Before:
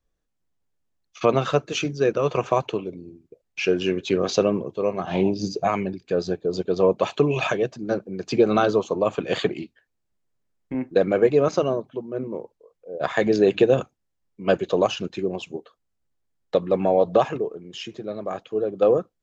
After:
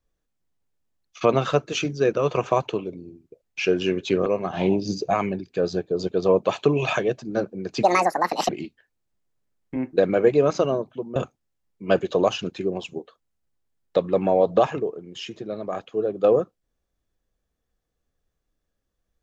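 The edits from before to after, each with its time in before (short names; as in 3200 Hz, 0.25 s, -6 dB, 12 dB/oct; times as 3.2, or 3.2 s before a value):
4.26–4.8 cut
8.37–9.47 speed 167%
12.14–13.74 cut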